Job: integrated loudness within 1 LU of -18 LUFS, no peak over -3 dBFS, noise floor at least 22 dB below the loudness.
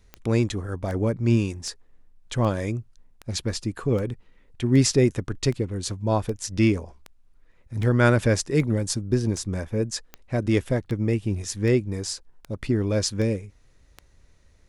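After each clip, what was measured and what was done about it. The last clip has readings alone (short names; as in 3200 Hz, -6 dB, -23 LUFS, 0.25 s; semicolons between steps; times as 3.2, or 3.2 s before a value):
clicks 19; loudness -25.0 LUFS; peak -5.5 dBFS; loudness target -18.0 LUFS
-> de-click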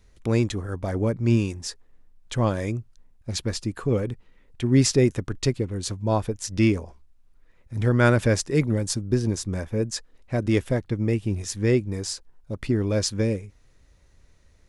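clicks 0; loudness -25.0 LUFS; peak -5.5 dBFS; loudness target -18.0 LUFS
-> gain +7 dB; limiter -3 dBFS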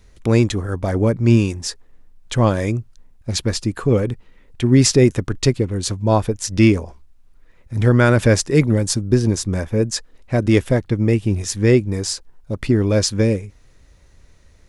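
loudness -18.5 LUFS; peak -3.0 dBFS; noise floor -51 dBFS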